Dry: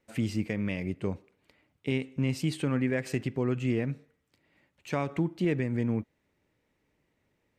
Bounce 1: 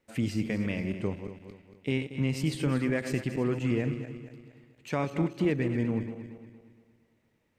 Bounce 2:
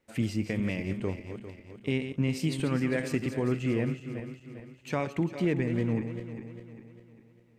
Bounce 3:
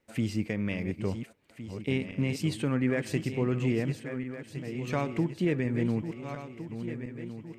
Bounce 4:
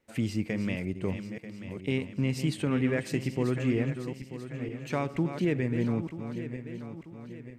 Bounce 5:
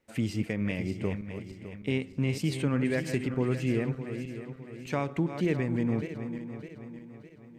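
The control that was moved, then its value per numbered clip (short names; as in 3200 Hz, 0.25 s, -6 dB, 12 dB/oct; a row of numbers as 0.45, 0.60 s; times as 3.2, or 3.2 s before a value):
regenerating reverse delay, time: 0.116, 0.2, 0.706, 0.469, 0.304 s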